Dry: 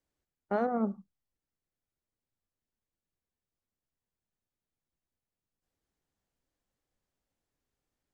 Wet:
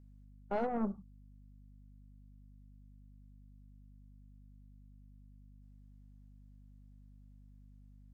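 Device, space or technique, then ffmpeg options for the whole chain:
valve amplifier with mains hum: -af "aeval=exprs='(tanh(15.8*val(0)+0.55)-tanh(0.55))/15.8':c=same,aeval=exprs='val(0)+0.00158*(sin(2*PI*50*n/s)+sin(2*PI*2*50*n/s)/2+sin(2*PI*3*50*n/s)/3+sin(2*PI*4*50*n/s)/4+sin(2*PI*5*50*n/s)/5)':c=same"

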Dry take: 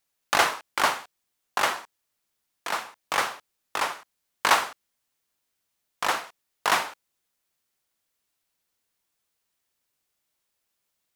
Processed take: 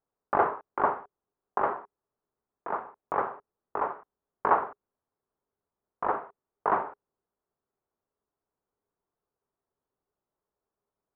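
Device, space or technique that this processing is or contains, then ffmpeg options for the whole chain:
under water: -af "lowpass=f=1.2k:w=0.5412,lowpass=f=1.2k:w=1.3066,equalizer=f=410:t=o:w=0.22:g=9.5"

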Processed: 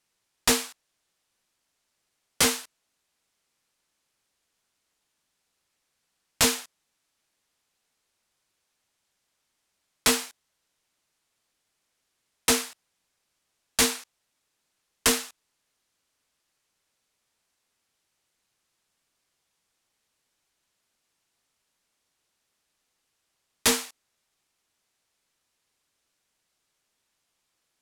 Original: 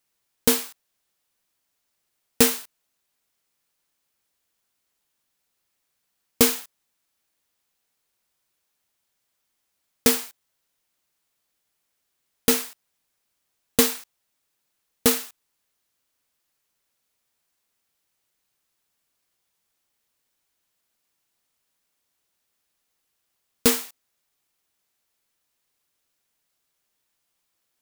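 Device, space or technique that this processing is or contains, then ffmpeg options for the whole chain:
overflowing digital effects unit: -af "aeval=exprs='(mod(3.76*val(0)+1,2)-1)/3.76':c=same,lowpass=9.8k,volume=2dB"

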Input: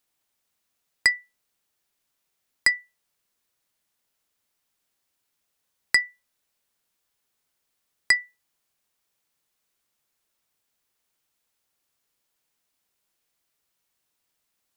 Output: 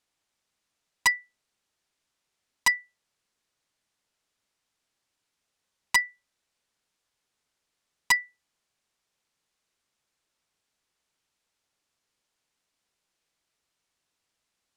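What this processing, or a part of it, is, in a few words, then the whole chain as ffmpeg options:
overflowing digital effects unit: -af "aeval=exprs='(mod(3.55*val(0)+1,2)-1)/3.55':c=same,lowpass=8.1k"

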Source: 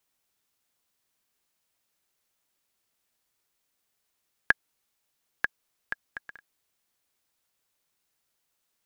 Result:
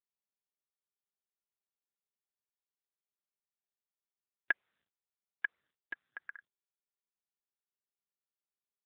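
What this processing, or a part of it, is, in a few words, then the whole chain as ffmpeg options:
mobile call with aggressive noise cancelling: -filter_complex "[0:a]asplit=3[a][b][c];[a]afade=t=out:st=4.51:d=0.02[d];[b]highpass=f=280:w=0.5412,highpass=f=280:w=1.3066,afade=t=in:st=4.51:d=0.02,afade=t=out:st=5.45:d=0.02[e];[c]afade=t=in:st=5.45:d=0.02[f];[d][e][f]amix=inputs=3:normalize=0,highpass=170,afftdn=nr=33:nf=-53,volume=1dB" -ar 8000 -c:a libopencore_amrnb -b:a 7950

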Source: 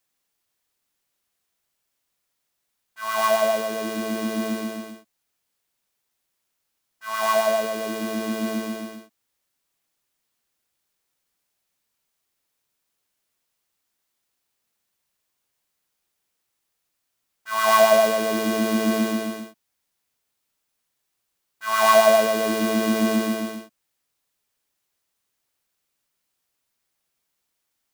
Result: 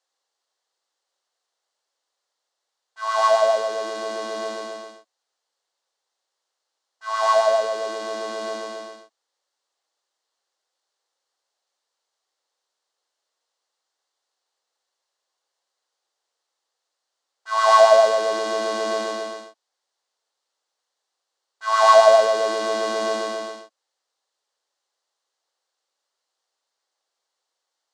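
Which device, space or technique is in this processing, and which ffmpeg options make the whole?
phone speaker on a table: -af "highpass=f=380:w=0.5412,highpass=f=380:w=1.3066,equalizer=f=530:t=q:w=4:g=5,equalizer=f=800:t=q:w=4:g=5,equalizer=f=1.1k:t=q:w=4:g=3,equalizer=f=2.4k:t=q:w=4:g=-8,equalizer=f=4.3k:t=q:w=4:g=4,lowpass=f=7.6k:w=0.5412,lowpass=f=7.6k:w=1.3066"

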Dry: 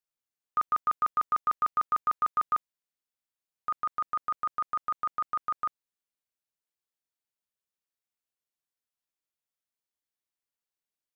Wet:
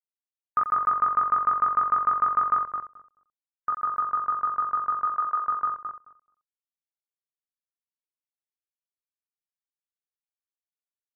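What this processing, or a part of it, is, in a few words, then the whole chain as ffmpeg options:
slapback doubling: -filter_complex "[0:a]asettb=1/sr,asplit=3[a][b][c];[a]atrim=end=5.064[d];[b]atrim=start=5.06:end=5.48,asetpts=PTS-STARTPTS,afade=t=in:d=0.004:c=qsin,afade=t=out:st=0.416:d=0.004:c=qsin,highpass=270[e];[c]atrim=start=5.476[f];[d][e]acrossfade=d=0.004:c1=hsin:c2=qsin[g];[g][f]acrossfade=d=0.004:c1=qsin:c2=hsin,afftdn=nr=33:nf=-47,asplit=3[h][i][j];[i]adelay=20,volume=-3dB[k];[j]adelay=88,volume=-11.5dB[l];[h][k][l]amix=inputs=3:normalize=0,asplit=2[m][n];[n]adelay=216,lowpass=f=1.5k:p=1,volume=-5.5dB,asplit=2[o][p];[p]adelay=216,lowpass=f=1.5k:p=1,volume=0.16,asplit=2[q][r];[r]adelay=216,lowpass=f=1.5k:p=1,volume=0.16[s];[m][o][q][s]amix=inputs=4:normalize=0,volume=4.5dB"

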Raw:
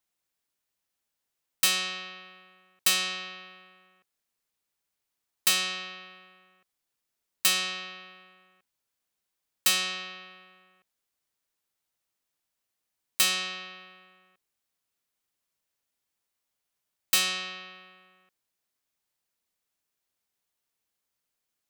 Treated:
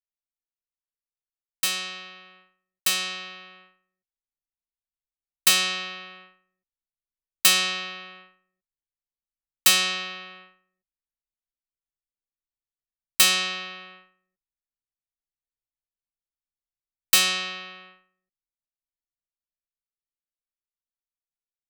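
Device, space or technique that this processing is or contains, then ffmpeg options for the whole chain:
voice memo with heavy noise removal: -af "anlmdn=0.00158,dynaudnorm=f=920:g=9:m=11.5dB,volume=-2dB"

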